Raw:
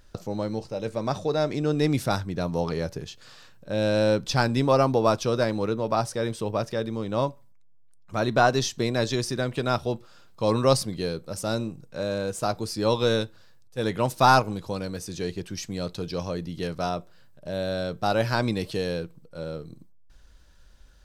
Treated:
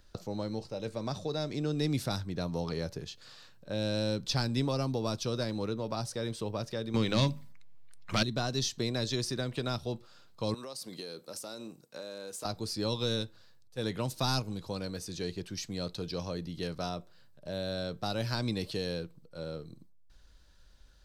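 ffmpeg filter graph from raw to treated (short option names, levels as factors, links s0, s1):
-filter_complex "[0:a]asettb=1/sr,asplit=3[s0][s1][s2];[s0]atrim=end=6.944[s3];[s1]atrim=start=6.94:end=8.23,asetpts=PTS-STARTPTS,afade=t=in:d=0.004:c=qsin,afade=t=out:st=1.286:d=0.004:c=qsin,equalizer=f=2100:t=o:w=1.4:g=12,bandreject=f=50:t=h:w=6,bandreject=f=100:t=h:w=6,bandreject=f=150:t=h:w=6,bandreject=f=200:t=h:w=6,bandreject=f=250:t=h:w=6,bandreject=f=300:t=h:w=6,aeval=exprs='0.447*sin(PI/2*2.24*val(0)/0.447)':c=same[s4];[s2]atrim=start=8.226[s5];[s3][s4]acrossfade=d=0.004:c1=hsin:c2=qsin[s6];[s6][s5]acrossfade=d=0.004:c1=qsin:c2=hsin,asettb=1/sr,asplit=3[s7][s8][s9];[s7]atrim=end=10.544[s10];[s8]atrim=start=10.54:end=12.45,asetpts=PTS-STARTPTS,afade=t=in:d=0.004:c=qsin,afade=t=out:st=1.906:d=0.004:c=qsin,highpass=260,highshelf=f=7500:g=10,acompressor=threshold=0.0251:ratio=20:attack=3.2:release=140:knee=1:detection=peak[s11];[s9]atrim=start=12.446[s12];[s10][s11]acrossfade=d=0.004:c1=hsin:c2=qsin[s13];[s13][s12]acrossfade=d=0.004:c1=qsin:c2=hsin,equalizer=f=4200:t=o:w=0.59:g=5,acrossover=split=300|3000[s14][s15][s16];[s15]acompressor=threshold=0.0355:ratio=6[s17];[s14][s17][s16]amix=inputs=3:normalize=0,volume=0.531"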